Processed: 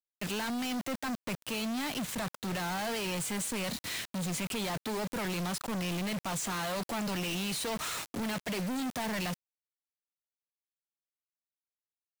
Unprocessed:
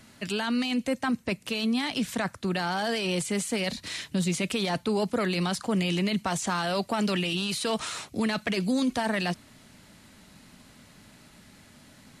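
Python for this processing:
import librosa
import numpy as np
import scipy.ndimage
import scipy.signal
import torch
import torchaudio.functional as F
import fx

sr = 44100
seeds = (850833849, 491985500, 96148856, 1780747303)

y = fx.dynamic_eq(x, sr, hz=4700.0, q=1.3, threshold_db=-46.0, ratio=4.0, max_db=-3)
y = fx.quant_companded(y, sr, bits=2)
y = y * librosa.db_to_amplitude(-8.0)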